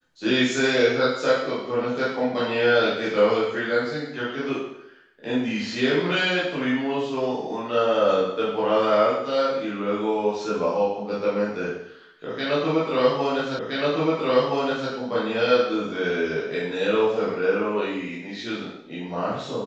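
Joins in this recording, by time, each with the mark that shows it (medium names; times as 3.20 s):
13.59 s: repeat of the last 1.32 s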